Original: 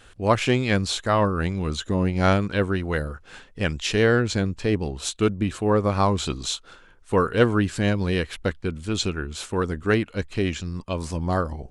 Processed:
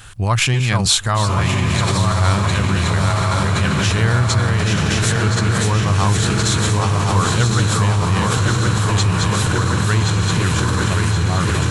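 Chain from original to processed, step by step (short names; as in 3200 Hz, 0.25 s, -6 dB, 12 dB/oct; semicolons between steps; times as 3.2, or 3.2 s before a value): regenerating reverse delay 0.536 s, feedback 79%, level -4 dB; graphic EQ 125/250/500/1000 Hz +12/-7/-8/+4 dB; diffused feedback echo 1.108 s, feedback 55%, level -4 dB; in parallel at +1 dB: negative-ratio compressor -25 dBFS, ratio -1; on the sum: high shelf 7100 Hz +11.5 dB; gain -2.5 dB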